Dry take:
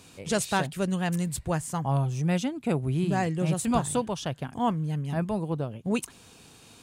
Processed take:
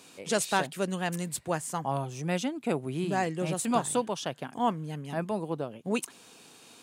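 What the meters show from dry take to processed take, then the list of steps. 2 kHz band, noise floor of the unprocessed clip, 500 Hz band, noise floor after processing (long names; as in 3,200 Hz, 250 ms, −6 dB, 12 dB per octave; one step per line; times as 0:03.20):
0.0 dB, −53 dBFS, −0.5 dB, −54 dBFS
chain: high-pass filter 240 Hz 12 dB per octave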